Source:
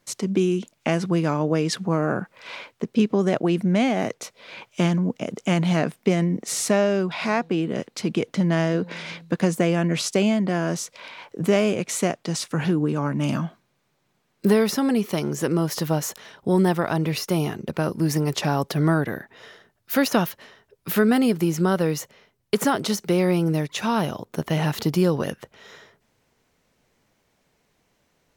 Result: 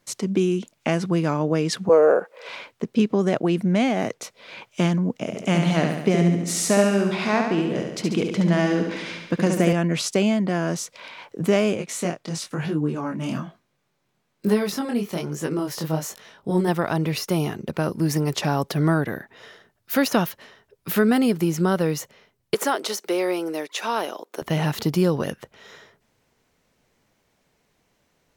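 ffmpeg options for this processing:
-filter_complex "[0:a]asettb=1/sr,asplit=3[s0][s1][s2];[s0]atrim=end=1.894[s3];[s1]atrim=start=1.89:end=2.49,asetpts=PTS-STARTPTS,afade=t=in:d=0.004:c=qsin,afade=t=out:st=0.596:d=0.004:c=qsin,highpass=f=480:t=q:w=6[s4];[s2]atrim=start=2.486[s5];[s3][s4]acrossfade=d=0.004:c1=hsin:c2=qsin[s6];[s6][s5]acrossfade=d=0.004:c1=qsin:c2=hsin,asettb=1/sr,asplit=3[s7][s8][s9];[s7]atrim=end=5.164[s10];[s8]atrim=start=5.16:end=9.73,asetpts=PTS-STARTPTS,afade=t=in:d=0.004:c=qsin,afade=t=out:st=4.566:d=0.004:c=qsin,aecho=1:1:70|140|210|280|350|420|490|560:0.562|0.332|0.196|0.115|0.0681|0.0402|0.0237|0.014,atrim=end_sample=201537[s11];[s9]atrim=start=9.726[s12];[s10][s11]acrossfade=d=0.004:c1=hsin:c2=qsin[s13];[s13][s12]acrossfade=d=0.004:c1=qsin:c2=hsin,asplit=3[s14][s15][s16];[s14]afade=t=out:st=11.75:d=0.02[s17];[s15]flanger=delay=19:depth=6.3:speed=1.1,afade=t=in:st=11.75:d=0.02,afade=t=out:st=16.67:d=0.02[s18];[s16]afade=t=in:st=16.67:d=0.02[s19];[s17][s18][s19]amix=inputs=3:normalize=0,asettb=1/sr,asplit=3[s20][s21][s22];[s20]atrim=end=22.544[s23];[s21]atrim=start=22.54:end=24.42,asetpts=PTS-STARTPTS,afade=t=in:d=0.004:c=qsin,afade=t=out:st=1.876:d=0.004:c=qsin,highpass=f=330:w=0.5412,highpass=f=330:w=1.3066[s24];[s22]atrim=start=24.416[s25];[s23][s24]acrossfade=d=0.004:c1=hsin:c2=qsin[s26];[s26][s25]acrossfade=d=0.004:c1=qsin:c2=hsin"

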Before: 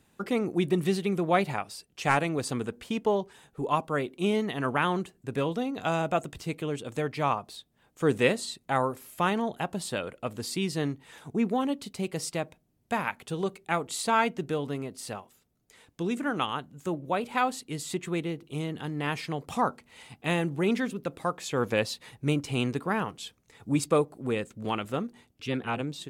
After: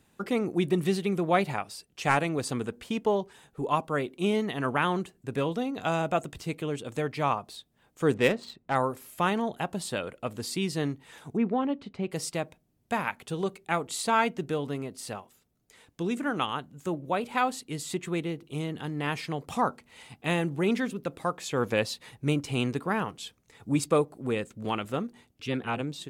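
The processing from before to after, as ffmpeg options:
-filter_complex "[0:a]asettb=1/sr,asplit=3[s0][s1][s2];[s0]atrim=end=8.144[s3];[s1]atrim=start=8.14:end=8.75,asetpts=PTS-STARTPTS,afade=t=in:d=0.004:c=qsin,afade=t=out:st=0.606:d=0.004:c=qsin,adynamicsmooth=sensitivity=4:basefreq=2000[s4];[s2]atrim=start=8.746[s5];[s3][s4]acrossfade=d=0.004:c1=hsin:c2=qsin[s6];[s6][s5]acrossfade=d=0.004:c1=qsin:c2=hsin,asettb=1/sr,asplit=3[s7][s8][s9];[s7]atrim=end=11.374[s10];[s8]atrim=start=11.37:end=12.11,asetpts=PTS-STARTPTS,afade=t=in:d=0.004:c=qsin,afade=t=out:st=0.736:d=0.004:c=qsin,lowpass=2400[s11];[s9]atrim=start=12.106[s12];[s10][s11]acrossfade=d=0.004:c1=hsin:c2=qsin[s13];[s13][s12]acrossfade=d=0.004:c1=qsin:c2=hsin"

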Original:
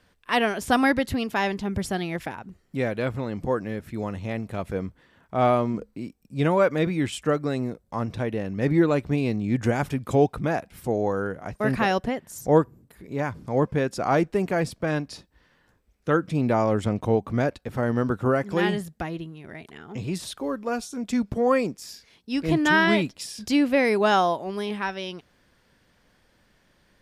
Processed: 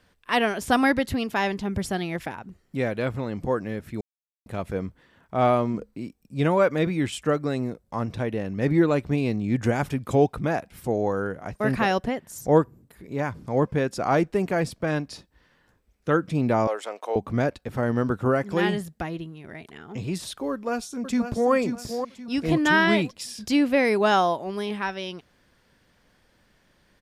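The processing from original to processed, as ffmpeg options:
-filter_complex "[0:a]asettb=1/sr,asplit=3[s0][s1][s2];[s0]atrim=end=16.674[s3];[s1]atrim=start=16.67:end=17.16,asetpts=PTS-STARTPTS,afade=t=in:d=0.004:c=qsin,afade=t=out:st=0.486:d=0.004:c=qsin,highpass=f=500:w=0.5412,highpass=f=500:w=1.3066[s4];[s2]atrim=start=17.156[s5];[s3][s4]acrossfade=d=0.004:c1=hsin:c2=qsin[s6];[s6][s5]acrossfade=d=0.004:c1=qsin:c2=hsin,asplit=2[s7][s8];[s8]afade=t=in:st=20.51:d=0.01,afade=t=out:st=21.51:d=0.01,aecho=0:1:530|1060|1590|2120:0.421697|0.147594|0.0516578|0.0180802[s9];[s7][s9]amix=inputs=2:normalize=0,asplit=3[s10][s11][s12];[s10]atrim=end=4.01,asetpts=PTS-STARTPTS,afade=t=out:st=4.006:d=0.004:c=hsin[s13];[s11]atrim=start=4.01:end=4.46,asetpts=PTS-STARTPTS,volume=0[s14];[s12]atrim=start=4.46,asetpts=PTS-STARTPTS,afade=t=in:d=0.004:c=hsin[s15];[s13][s14][s15]concat=n=3:v=0:a=1"

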